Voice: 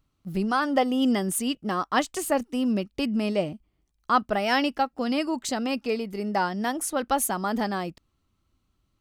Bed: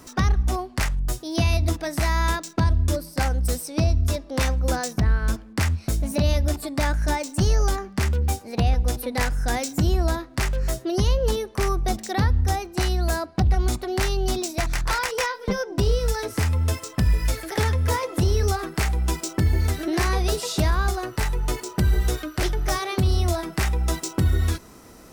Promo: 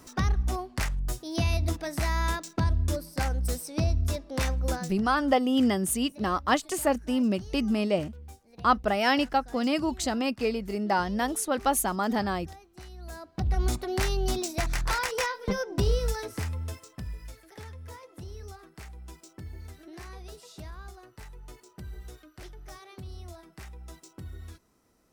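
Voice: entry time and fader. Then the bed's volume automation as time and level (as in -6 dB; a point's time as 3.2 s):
4.55 s, -0.5 dB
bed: 4.72 s -5.5 dB
5.05 s -23 dB
12.92 s -23 dB
13.62 s -4 dB
15.97 s -4 dB
17.37 s -21.5 dB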